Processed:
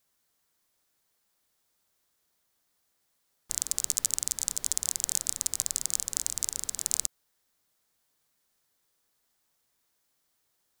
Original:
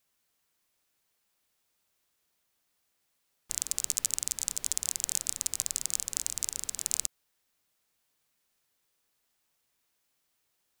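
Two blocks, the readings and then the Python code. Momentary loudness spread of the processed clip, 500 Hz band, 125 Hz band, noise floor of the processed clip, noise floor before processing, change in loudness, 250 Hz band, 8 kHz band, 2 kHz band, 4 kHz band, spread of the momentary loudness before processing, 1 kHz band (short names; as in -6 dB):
4 LU, +2.0 dB, +2.0 dB, -75 dBFS, -77 dBFS, +2.0 dB, +2.0 dB, +2.0 dB, -0.5 dB, +1.5 dB, 4 LU, +2.0 dB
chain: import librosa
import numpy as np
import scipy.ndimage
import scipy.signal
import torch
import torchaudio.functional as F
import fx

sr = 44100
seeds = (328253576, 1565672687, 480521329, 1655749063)

y = fx.peak_eq(x, sr, hz=2600.0, db=-5.0, octaves=0.55)
y = y * 10.0 ** (2.0 / 20.0)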